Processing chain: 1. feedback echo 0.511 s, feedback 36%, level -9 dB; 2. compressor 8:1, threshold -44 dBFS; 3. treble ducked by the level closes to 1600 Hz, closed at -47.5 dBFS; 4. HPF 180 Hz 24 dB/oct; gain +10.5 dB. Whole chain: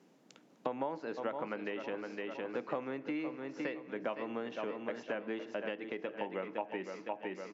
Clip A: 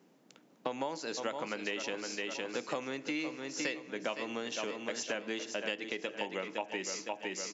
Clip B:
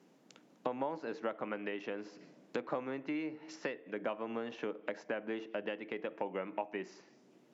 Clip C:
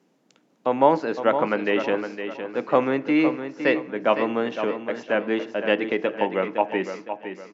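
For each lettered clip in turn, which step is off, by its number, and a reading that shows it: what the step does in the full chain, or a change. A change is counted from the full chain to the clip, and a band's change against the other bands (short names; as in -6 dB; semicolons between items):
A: 3, 4 kHz band +13.0 dB; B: 1, momentary loudness spread change +2 LU; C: 2, mean gain reduction 12.5 dB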